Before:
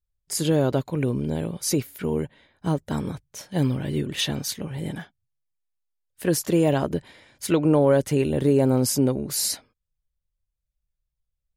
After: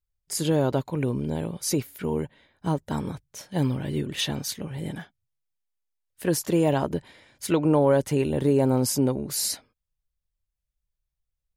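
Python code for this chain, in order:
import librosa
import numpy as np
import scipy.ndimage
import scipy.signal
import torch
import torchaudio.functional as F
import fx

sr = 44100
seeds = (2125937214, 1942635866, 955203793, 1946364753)

y = fx.dynamic_eq(x, sr, hz=910.0, q=3.3, threshold_db=-44.0, ratio=4.0, max_db=5)
y = F.gain(torch.from_numpy(y), -2.0).numpy()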